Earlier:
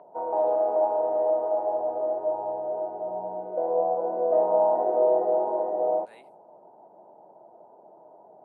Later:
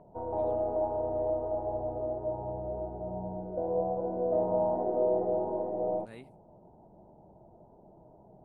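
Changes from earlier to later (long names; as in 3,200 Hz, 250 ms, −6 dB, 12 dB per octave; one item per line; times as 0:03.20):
background −9.5 dB
master: remove high-pass filter 580 Hz 12 dB per octave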